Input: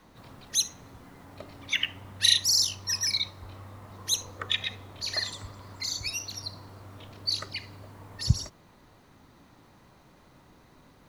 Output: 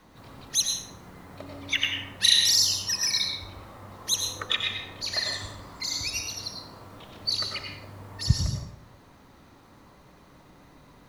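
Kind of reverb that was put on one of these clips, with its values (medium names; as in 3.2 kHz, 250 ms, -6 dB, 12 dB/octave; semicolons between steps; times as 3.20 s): plate-style reverb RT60 0.84 s, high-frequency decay 0.55×, pre-delay 80 ms, DRR 1.5 dB; trim +1 dB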